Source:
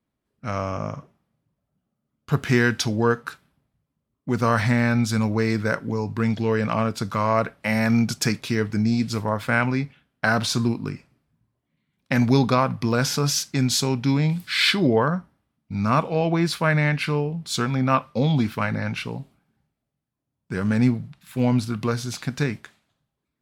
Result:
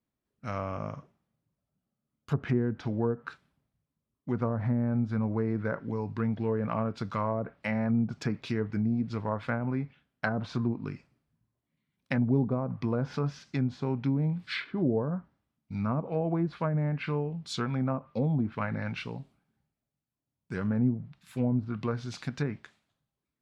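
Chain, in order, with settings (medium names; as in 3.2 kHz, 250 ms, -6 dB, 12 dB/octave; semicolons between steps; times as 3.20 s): low-pass that closes with the level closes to 510 Hz, closed at -15.5 dBFS; trim -7 dB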